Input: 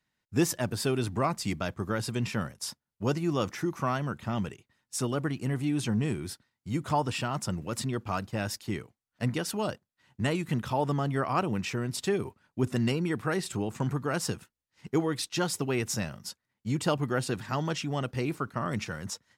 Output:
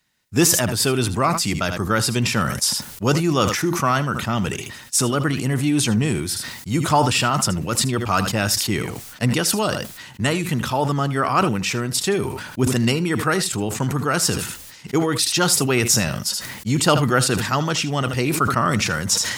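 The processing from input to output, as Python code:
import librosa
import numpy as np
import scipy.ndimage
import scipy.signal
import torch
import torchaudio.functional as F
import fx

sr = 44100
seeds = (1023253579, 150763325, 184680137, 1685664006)

p1 = x + fx.echo_single(x, sr, ms=78, db=-16.5, dry=0)
p2 = fx.dynamic_eq(p1, sr, hz=1300.0, q=4.2, threshold_db=-46.0, ratio=4.0, max_db=5)
p3 = fx.rider(p2, sr, range_db=10, speed_s=2.0)
p4 = fx.high_shelf(p3, sr, hz=2800.0, db=8.5)
p5 = fx.sustainer(p4, sr, db_per_s=50.0)
y = p5 * 10.0 ** (7.0 / 20.0)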